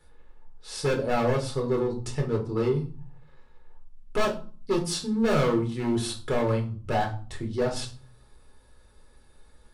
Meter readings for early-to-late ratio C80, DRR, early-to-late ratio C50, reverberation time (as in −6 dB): 16.5 dB, −0.5 dB, 11.0 dB, 0.40 s